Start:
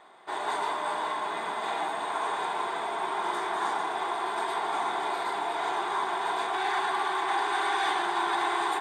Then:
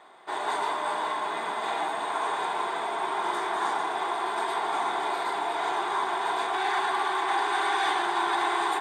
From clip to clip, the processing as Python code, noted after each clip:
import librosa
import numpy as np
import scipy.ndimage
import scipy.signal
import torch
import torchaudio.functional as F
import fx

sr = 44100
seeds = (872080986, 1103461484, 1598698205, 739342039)

y = scipy.signal.sosfilt(scipy.signal.butter(2, 91.0, 'highpass', fs=sr, output='sos'), x)
y = fx.peak_eq(y, sr, hz=190.0, db=-3.0, octaves=0.22)
y = F.gain(torch.from_numpy(y), 1.5).numpy()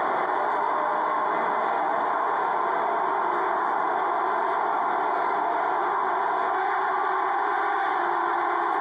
y = scipy.signal.savgol_filter(x, 41, 4, mode='constant')
y = fx.env_flatten(y, sr, amount_pct=100)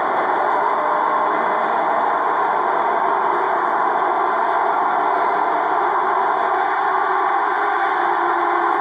y = x + 10.0 ** (-5.0 / 20.0) * np.pad(x, (int(170 * sr / 1000.0), 0))[:len(x)]
y = F.gain(torch.from_numpy(y), 5.5).numpy()